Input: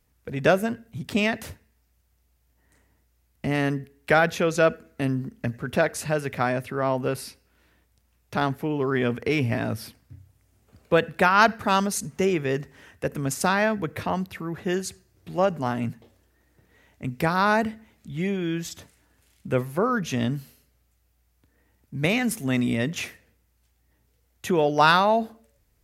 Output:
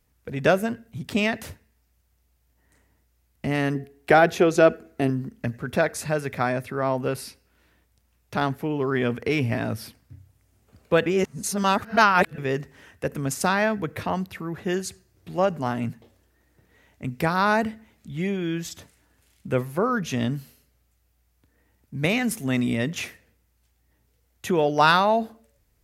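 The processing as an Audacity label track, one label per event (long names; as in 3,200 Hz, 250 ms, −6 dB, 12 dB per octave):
3.750000	5.100000	hollow resonant body resonances 370/710 Hz, height 12 dB
5.670000	7.000000	notch filter 2,900 Hz, Q 11
11.060000	12.380000	reverse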